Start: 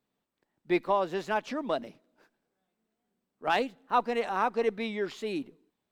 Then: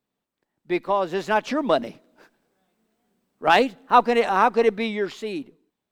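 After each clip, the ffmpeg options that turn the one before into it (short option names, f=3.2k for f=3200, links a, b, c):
-af "dynaudnorm=f=270:g=9:m=11.5dB"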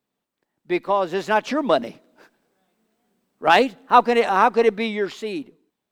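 -af "lowshelf=f=85:g=-7,volume=2dB"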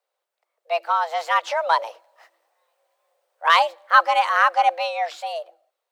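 -af "afreqshift=330,volume=-1dB"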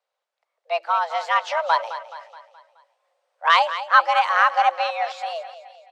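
-af "highpass=480,lowpass=6.5k,aecho=1:1:212|424|636|848|1060:0.237|0.116|0.0569|0.0279|0.0137"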